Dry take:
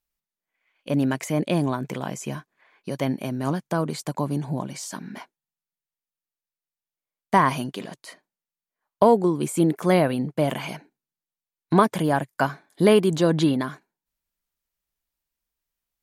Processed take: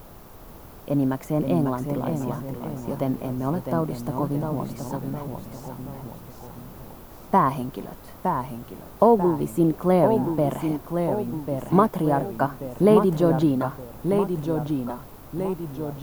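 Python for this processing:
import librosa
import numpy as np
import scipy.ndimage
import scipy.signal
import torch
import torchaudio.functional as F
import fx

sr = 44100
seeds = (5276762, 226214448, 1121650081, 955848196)

y = fx.dmg_noise_colour(x, sr, seeds[0], colour='pink', level_db=-43.0)
y = fx.band_shelf(y, sr, hz=4000.0, db=-12.0, octaves=2.9)
y = fx.echo_pitch(y, sr, ms=478, semitones=-1, count=3, db_per_echo=-6.0)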